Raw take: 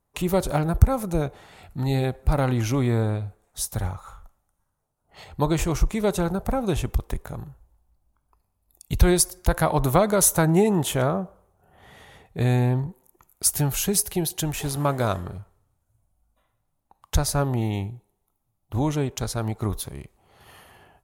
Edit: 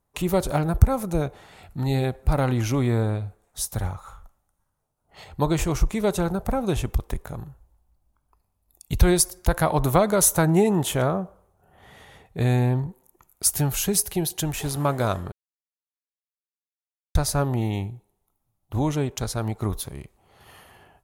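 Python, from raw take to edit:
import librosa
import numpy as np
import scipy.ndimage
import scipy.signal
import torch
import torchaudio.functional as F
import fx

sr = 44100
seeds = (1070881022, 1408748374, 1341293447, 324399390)

y = fx.edit(x, sr, fx.silence(start_s=15.32, length_s=1.83), tone=tone)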